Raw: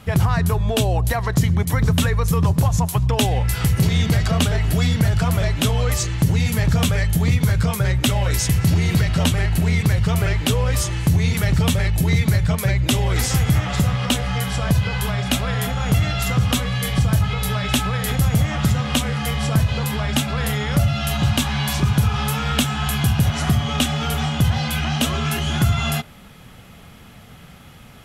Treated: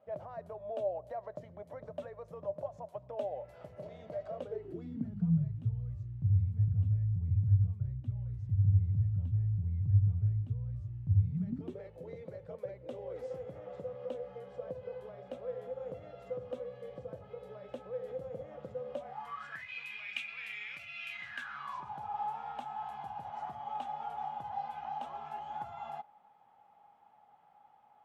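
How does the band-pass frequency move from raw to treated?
band-pass, Q 16
4.32 s 600 Hz
5.72 s 100 Hz
11.2 s 100 Hz
11.82 s 510 Hz
18.92 s 510 Hz
19.72 s 2400 Hz
21.1 s 2400 Hz
21.92 s 830 Hz

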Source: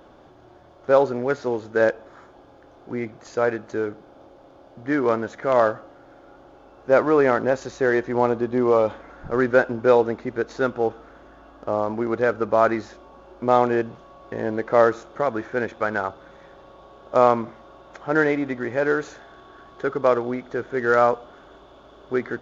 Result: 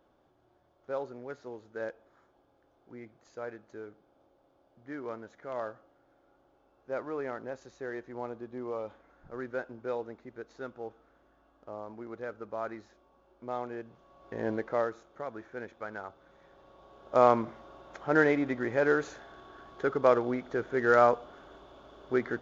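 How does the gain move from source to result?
13.81 s -18.5 dB
14.51 s -5.5 dB
14.89 s -16 dB
16.06 s -16 dB
17.36 s -4.5 dB

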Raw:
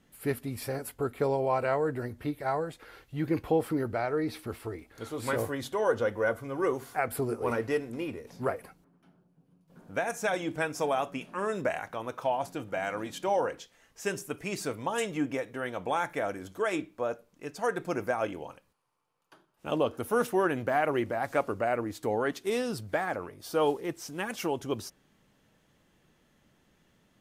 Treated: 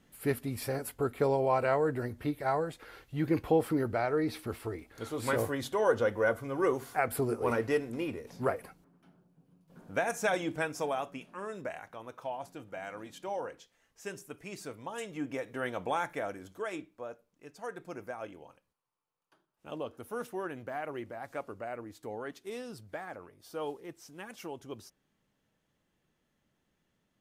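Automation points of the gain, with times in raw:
10.33 s 0 dB
11.49 s -9 dB
15.05 s -9 dB
15.64 s 0 dB
17.12 s -11 dB

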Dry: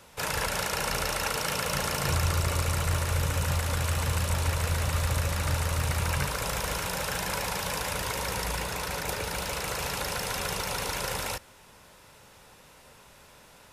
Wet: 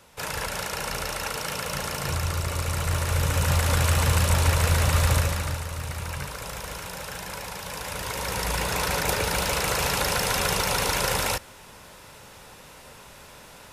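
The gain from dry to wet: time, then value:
2.5 s -1 dB
3.71 s +6.5 dB
5.15 s +6.5 dB
5.65 s -4.5 dB
7.62 s -4.5 dB
8.8 s +7 dB

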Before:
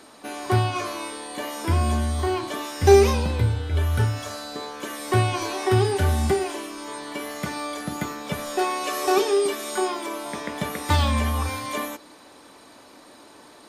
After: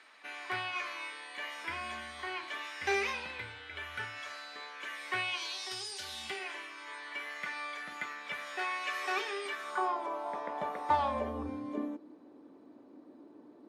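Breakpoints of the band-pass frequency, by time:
band-pass, Q 2.2
5.14 s 2100 Hz
5.87 s 6200 Hz
6.5 s 2000 Hz
9.46 s 2000 Hz
9.98 s 810 Hz
11.07 s 810 Hz
11.47 s 290 Hz

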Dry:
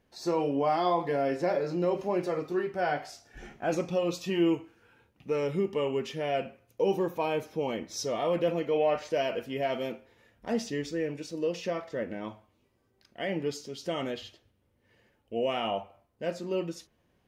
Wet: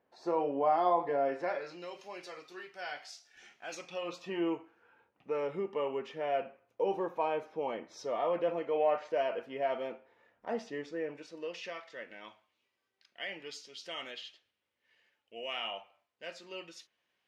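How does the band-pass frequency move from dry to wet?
band-pass, Q 0.88
1.25 s 800 Hz
1.89 s 4100 Hz
3.77 s 4100 Hz
4.25 s 950 Hz
11.05 s 950 Hz
11.8 s 2900 Hz

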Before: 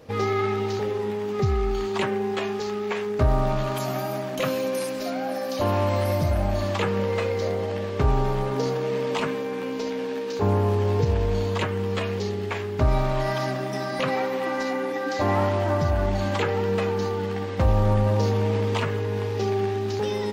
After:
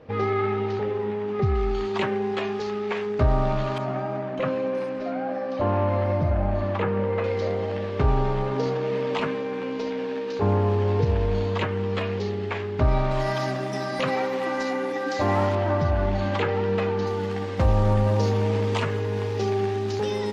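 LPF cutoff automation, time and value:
2700 Hz
from 1.55 s 4600 Hz
from 3.78 s 1900 Hz
from 7.24 s 4100 Hz
from 13.11 s 9500 Hz
from 15.55 s 4000 Hz
from 17.07 s 10000 Hz

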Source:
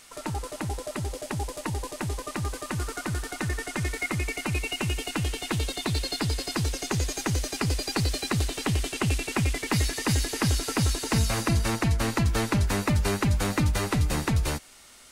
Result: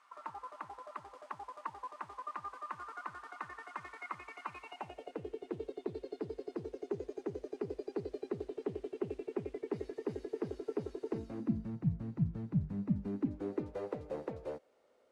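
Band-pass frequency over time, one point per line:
band-pass, Q 4.8
4.62 s 1100 Hz
5.26 s 410 Hz
11.1 s 410 Hz
11.76 s 160 Hz
12.73 s 160 Hz
13.79 s 500 Hz

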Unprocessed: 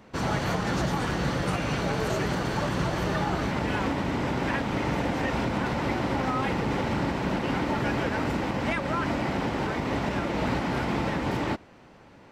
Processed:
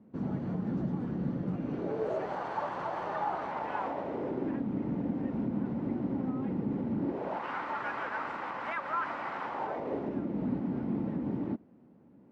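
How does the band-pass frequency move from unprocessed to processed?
band-pass, Q 2
1.55 s 220 Hz
2.42 s 860 Hz
3.79 s 860 Hz
4.66 s 230 Hz
6.98 s 230 Hz
7.46 s 1200 Hz
9.44 s 1200 Hz
10.27 s 230 Hz

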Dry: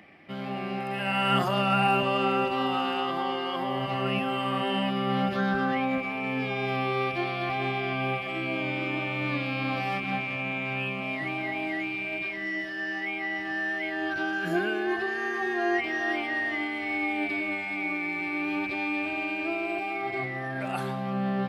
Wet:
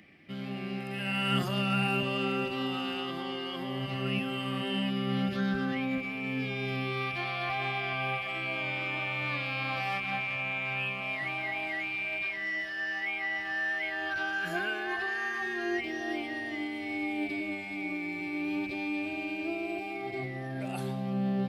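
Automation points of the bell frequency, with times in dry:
bell -12.5 dB 1.8 oct
6.83 s 850 Hz
7.37 s 280 Hz
15.16 s 280 Hz
15.92 s 1300 Hz

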